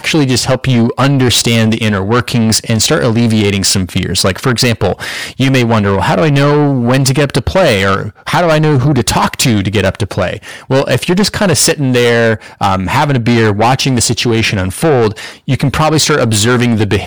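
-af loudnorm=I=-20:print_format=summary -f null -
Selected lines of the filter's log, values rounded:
Input Integrated:    -11.1 LUFS
Input True Peak:      -2.0 dBTP
Input LRA:             1.2 LU
Input Threshold:     -21.1 LUFS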